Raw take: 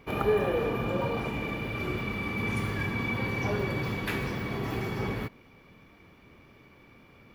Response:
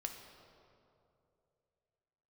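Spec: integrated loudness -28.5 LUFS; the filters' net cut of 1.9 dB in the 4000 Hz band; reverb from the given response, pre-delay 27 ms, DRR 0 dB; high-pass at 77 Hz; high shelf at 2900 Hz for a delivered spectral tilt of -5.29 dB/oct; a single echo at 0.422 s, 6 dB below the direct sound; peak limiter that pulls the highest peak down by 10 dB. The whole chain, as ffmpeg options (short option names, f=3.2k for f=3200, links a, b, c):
-filter_complex "[0:a]highpass=77,highshelf=f=2.9k:g=6.5,equalizer=f=4k:t=o:g=-8,alimiter=limit=-24dB:level=0:latency=1,aecho=1:1:422:0.501,asplit=2[a][b];[1:a]atrim=start_sample=2205,adelay=27[c];[b][c]afir=irnorm=-1:irlink=0,volume=1.5dB[d];[a][d]amix=inputs=2:normalize=0,volume=1dB"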